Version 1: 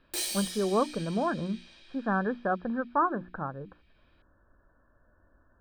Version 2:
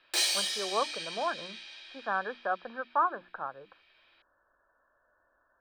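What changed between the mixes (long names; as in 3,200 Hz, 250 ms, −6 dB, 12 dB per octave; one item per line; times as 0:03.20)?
background +8.5 dB
master: add three-way crossover with the lows and the highs turned down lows −22 dB, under 500 Hz, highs −13 dB, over 6,800 Hz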